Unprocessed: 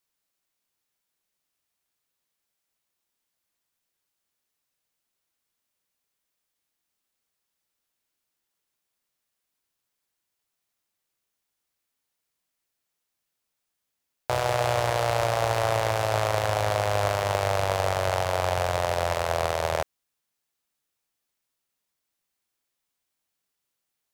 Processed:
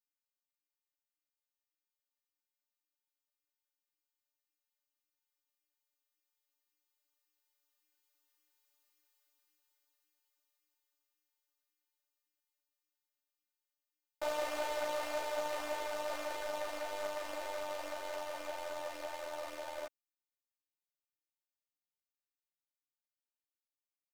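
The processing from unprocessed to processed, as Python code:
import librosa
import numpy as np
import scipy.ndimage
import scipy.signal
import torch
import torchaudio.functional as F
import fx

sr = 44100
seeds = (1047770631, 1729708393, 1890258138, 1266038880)

y = fx.doppler_pass(x, sr, speed_mps=7, closest_m=6.5, pass_at_s=8.89)
y = fx.low_shelf(y, sr, hz=120.0, db=-11.5)
y = fx.robotise(y, sr, hz=299.0)
y = fx.ensemble(y, sr)
y = F.gain(torch.from_numpy(y), 10.0).numpy()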